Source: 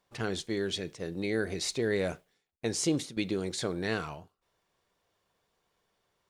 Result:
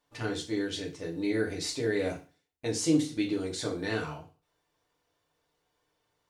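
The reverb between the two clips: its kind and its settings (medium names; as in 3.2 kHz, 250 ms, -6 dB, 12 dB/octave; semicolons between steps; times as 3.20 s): FDN reverb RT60 0.35 s, low-frequency decay 1×, high-frequency decay 0.95×, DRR -2 dB; trim -4.5 dB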